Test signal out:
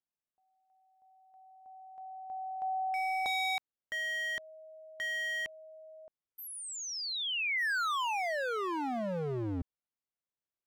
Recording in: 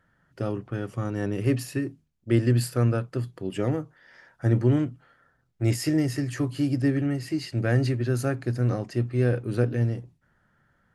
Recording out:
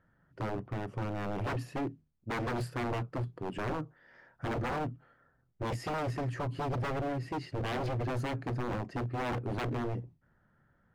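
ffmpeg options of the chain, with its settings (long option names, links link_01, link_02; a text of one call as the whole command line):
ffmpeg -i in.wav -af "lowpass=frequency=1200:poles=1,aeval=exprs='0.0447*(abs(mod(val(0)/0.0447+3,4)-2)-1)':channel_layout=same,volume=-1.5dB" out.wav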